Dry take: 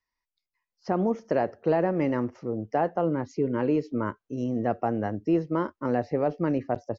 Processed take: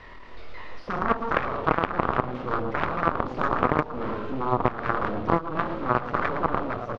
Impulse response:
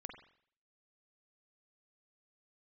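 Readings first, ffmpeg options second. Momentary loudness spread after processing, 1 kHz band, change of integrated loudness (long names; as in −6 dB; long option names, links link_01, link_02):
6 LU, +6.5 dB, +1.0 dB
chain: -filter_complex "[0:a]aeval=exprs='val(0)+0.5*0.0473*sgn(val(0))':channel_layout=same,acrossover=split=210|2100[link_01][link_02][link_03];[link_03]acrusher=bits=5:dc=4:mix=0:aa=0.000001[link_04];[link_01][link_02][link_04]amix=inputs=3:normalize=0[link_05];[1:a]atrim=start_sample=2205,afade=type=out:start_time=0.2:duration=0.01,atrim=end_sample=9261,asetrate=79380,aresample=44100[link_06];[link_05][link_06]afir=irnorm=-1:irlink=0,crystalizer=i=3.5:c=0,lowpass=frequency=3200:width=0.5412,lowpass=frequency=3200:width=1.3066,lowshelf=frequency=740:width_type=q:width=1.5:gain=7.5,asplit=2[link_07][link_08];[link_08]aecho=0:1:112|224|336|448:0.501|0.155|0.0482|0.0149[link_09];[link_07][link_09]amix=inputs=2:normalize=0,dynaudnorm=framelen=110:gausssize=13:maxgain=3dB,aeval=exprs='0.447*(cos(1*acos(clip(val(0)/0.447,-1,1)))-cos(1*PI/2))+0.178*(cos(3*acos(clip(val(0)/0.447,-1,1)))-cos(3*PI/2))+0.126*(cos(4*acos(clip(val(0)/0.447,-1,1)))-cos(4*PI/2))+0.0891*(cos(6*acos(clip(val(0)/0.447,-1,1)))-cos(6*PI/2))+0.00794*(cos(7*acos(clip(val(0)/0.447,-1,1)))-cos(7*PI/2))':channel_layout=same,equalizer=frequency=1200:width_type=o:width=0.55:gain=7.5,acompressor=threshold=-23dB:ratio=6,volume=5.5dB"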